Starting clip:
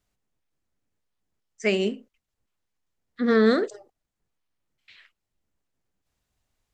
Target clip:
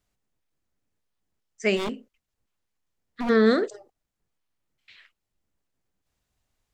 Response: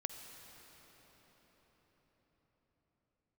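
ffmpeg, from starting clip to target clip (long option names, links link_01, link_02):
-filter_complex "[0:a]asplit=3[link_01][link_02][link_03];[link_01]afade=type=out:start_time=1.76:duration=0.02[link_04];[link_02]aeval=exprs='0.0668*(abs(mod(val(0)/0.0668+3,4)-2)-1)':channel_layout=same,afade=type=in:start_time=1.76:duration=0.02,afade=type=out:start_time=3.28:duration=0.02[link_05];[link_03]afade=type=in:start_time=3.28:duration=0.02[link_06];[link_04][link_05][link_06]amix=inputs=3:normalize=0"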